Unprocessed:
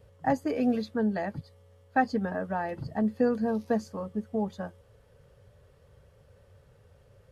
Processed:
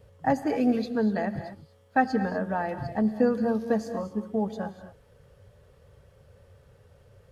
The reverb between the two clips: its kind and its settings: non-linear reverb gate 0.27 s rising, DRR 10 dB; gain +2 dB

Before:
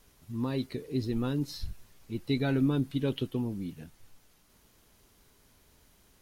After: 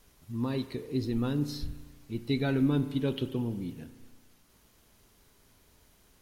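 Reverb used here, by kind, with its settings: spring tank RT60 1.4 s, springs 34 ms, chirp 75 ms, DRR 11.5 dB

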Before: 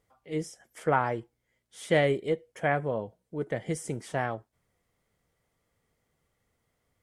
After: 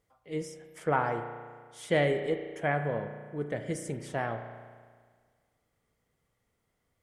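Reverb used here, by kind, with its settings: spring tank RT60 1.7 s, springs 34 ms, chirp 35 ms, DRR 7 dB; gain -2.5 dB

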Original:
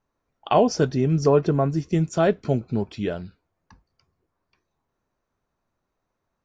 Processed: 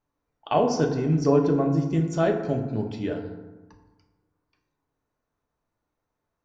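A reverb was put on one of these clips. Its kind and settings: FDN reverb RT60 1.2 s, low-frequency decay 1.2×, high-frequency decay 0.45×, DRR 2.5 dB; gain -5 dB

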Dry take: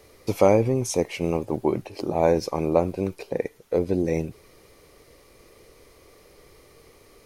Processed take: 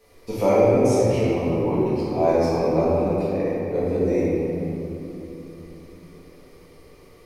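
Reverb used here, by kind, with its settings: shoebox room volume 170 m³, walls hard, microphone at 1.7 m; gain -10 dB

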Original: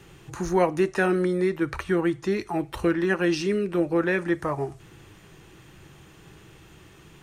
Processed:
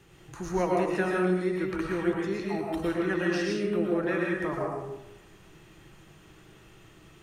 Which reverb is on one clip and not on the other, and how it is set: digital reverb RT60 0.89 s, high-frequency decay 0.65×, pre-delay 75 ms, DRR -2.5 dB; gain -7.5 dB

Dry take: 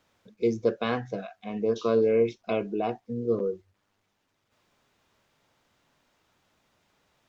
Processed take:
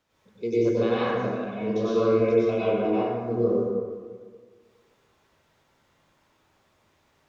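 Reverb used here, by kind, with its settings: plate-style reverb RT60 1.7 s, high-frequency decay 0.5×, pre-delay 85 ms, DRR -9.5 dB; gain -6 dB

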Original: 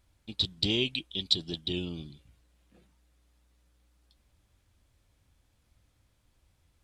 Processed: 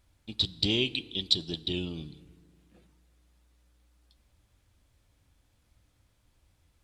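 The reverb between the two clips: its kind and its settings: FDN reverb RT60 2.1 s, low-frequency decay 1.1×, high-frequency decay 0.5×, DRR 17 dB; gain +1 dB

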